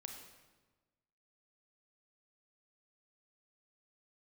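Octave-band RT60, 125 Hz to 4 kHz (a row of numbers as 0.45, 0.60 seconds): 1.5, 1.5, 1.4, 1.2, 1.1, 1.0 seconds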